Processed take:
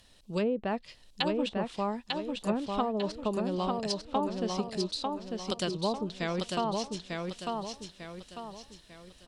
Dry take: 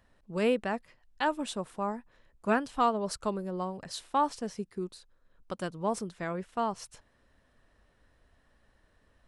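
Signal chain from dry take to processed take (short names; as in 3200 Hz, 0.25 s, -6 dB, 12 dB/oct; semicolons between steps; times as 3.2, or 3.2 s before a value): resonant high shelf 2400 Hz +13 dB, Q 1.5; treble ducked by the level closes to 590 Hz, closed at -23 dBFS; compressor, threshold -28 dBFS, peak gain reduction 5.5 dB; on a send: feedback echo 0.897 s, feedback 40%, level -3.5 dB; on the sum: gain +3 dB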